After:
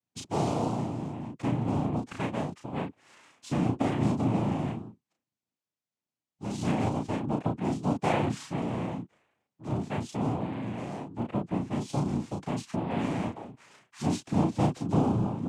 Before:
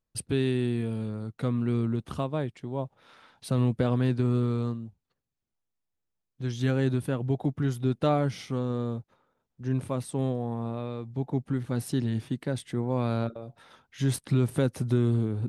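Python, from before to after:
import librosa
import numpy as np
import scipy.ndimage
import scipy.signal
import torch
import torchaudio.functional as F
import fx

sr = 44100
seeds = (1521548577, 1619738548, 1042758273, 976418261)

y = fx.noise_vocoder(x, sr, seeds[0], bands=4)
y = fx.doubler(y, sr, ms=34.0, db=-4)
y = F.gain(torch.from_numpy(y), -3.0).numpy()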